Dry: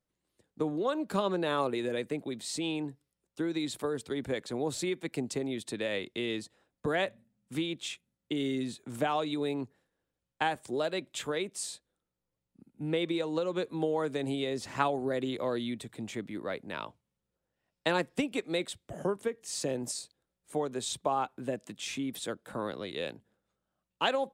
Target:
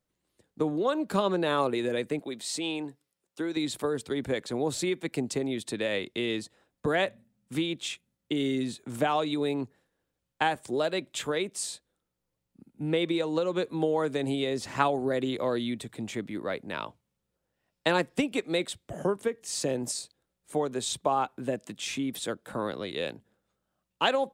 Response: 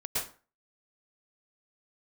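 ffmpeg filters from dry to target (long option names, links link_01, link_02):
-filter_complex "[0:a]asettb=1/sr,asplit=3[link_01][link_02][link_03];[link_01]atrim=end=2.194[link_04];[link_02]atrim=start=2.19:end=3.57,asetpts=PTS-STARTPTS,afade=type=in:duration=0.004:curve=qsin,afade=type=out:start_time=1.376:duration=0.004:curve=qsin,highpass=frequency=340:poles=1[link_05];[link_03]atrim=start=3.566[link_06];[link_04][link_05]acrossfade=duration=0.004:curve1=hsin:curve2=qsin[link_07];[link_07][link_06]acrossfade=duration=0.004:curve1=qsin:curve2=hsin,volume=3.5dB"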